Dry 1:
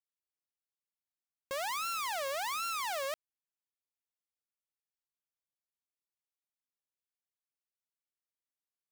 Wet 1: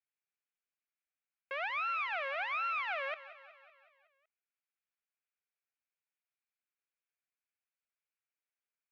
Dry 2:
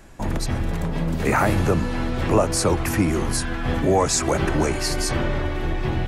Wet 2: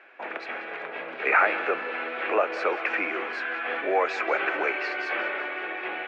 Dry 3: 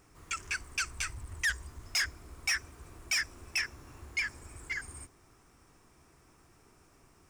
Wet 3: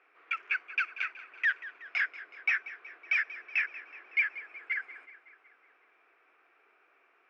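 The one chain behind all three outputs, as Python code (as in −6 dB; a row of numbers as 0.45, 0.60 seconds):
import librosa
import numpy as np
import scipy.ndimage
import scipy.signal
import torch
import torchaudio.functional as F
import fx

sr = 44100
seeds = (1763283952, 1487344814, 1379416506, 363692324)

p1 = fx.cabinet(x, sr, low_hz=470.0, low_slope=24, high_hz=2800.0, hz=(580.0, 950.0, 1500.0, 2400.0), db=(-4, -7, 5, 8))
y = p1 + fx.echo_feedback(p1, sr, ms=186, feedback_pct=58, wet_db=-16, dry=0)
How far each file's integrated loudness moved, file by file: 0.0, −4.5, +2.5 LU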